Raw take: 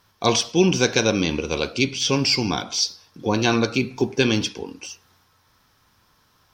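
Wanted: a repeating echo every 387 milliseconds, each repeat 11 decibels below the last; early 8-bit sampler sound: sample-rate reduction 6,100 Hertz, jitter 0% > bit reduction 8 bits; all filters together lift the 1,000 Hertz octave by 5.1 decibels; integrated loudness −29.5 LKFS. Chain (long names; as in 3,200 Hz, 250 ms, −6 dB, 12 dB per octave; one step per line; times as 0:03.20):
parametric band 1,000 Hz +6.5 dB
repeating echo 387 ms, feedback 28%, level −11 dB
sample-rate reduction 6,100 Hz, jitter 0%
bit reduction 8 bits
level −9 dB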